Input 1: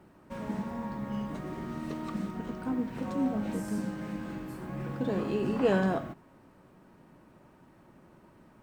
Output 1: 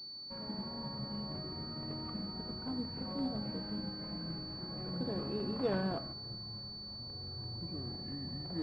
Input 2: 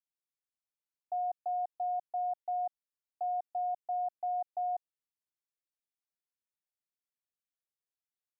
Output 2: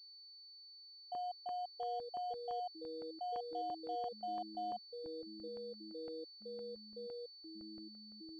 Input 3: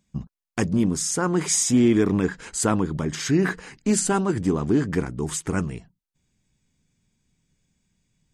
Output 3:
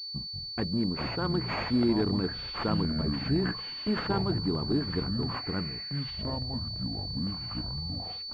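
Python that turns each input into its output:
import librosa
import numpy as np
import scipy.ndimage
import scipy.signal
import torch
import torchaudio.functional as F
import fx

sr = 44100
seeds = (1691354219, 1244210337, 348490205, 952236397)

y = fx.echo_pitch(x, sr, ms=119, semitones=-7, count=3, db_per_echo=-6.0)
y = fx.buffer_crackle(y, sr, first_s=0.98, period_s=0.17, block=64, kind='zero')
y = fx.pwm(y, sr, carrier_hz=4500.0)
y = y * librosa.db_to_amplitude(-8.0)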